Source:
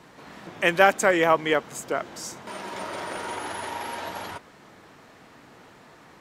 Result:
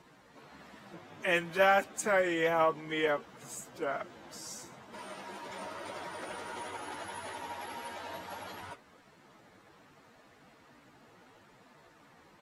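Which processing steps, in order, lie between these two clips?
time stretch by phase vocoder 2×
level −7.5 dB

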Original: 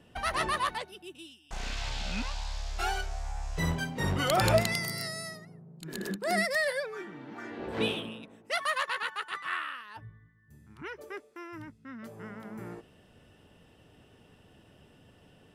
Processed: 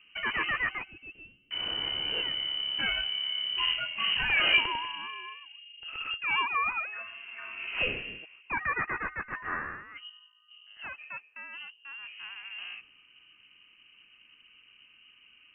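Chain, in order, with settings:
low-pass that shuts in the quiet parts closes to 1,500 Hz, open at −26.5 dBFS
voice inversion scrambler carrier 3,000 Hz

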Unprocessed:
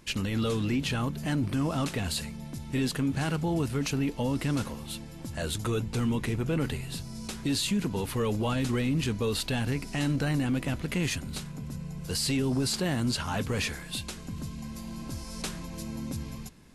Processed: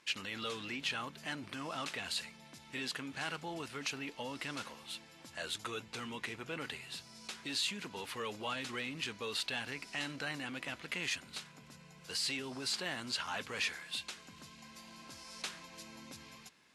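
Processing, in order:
resonant band-pass 2,500 Hz, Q 0.58
level −2 dB

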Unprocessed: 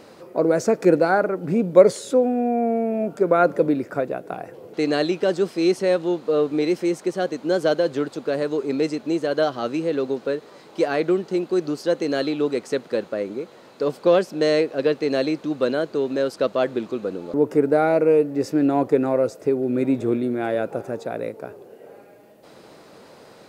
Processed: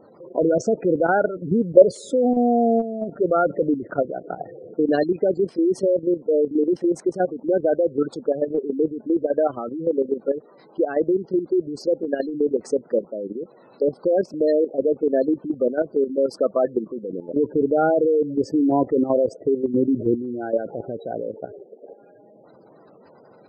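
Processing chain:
gate on every frequency bin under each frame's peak −15 dB strong
output level in coarse steps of 11 dB
floating-point word with a short mantissa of 8 bits
level +4.5 dB

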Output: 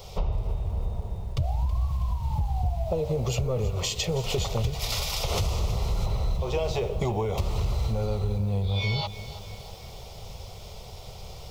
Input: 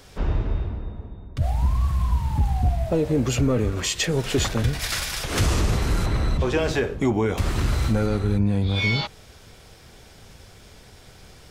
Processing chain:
phaser with its sweep stopped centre 680 Hz, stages 4
downward compressor 12 to 1, threshold −31 dBFS, peak gain reduction 15 dB
parametric band 9,300 Hz −11 dB 0.81 octaves
feedback echo at a low word length 324 ms, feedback 55%, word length 9 bits, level −14 dB
level +8 dB

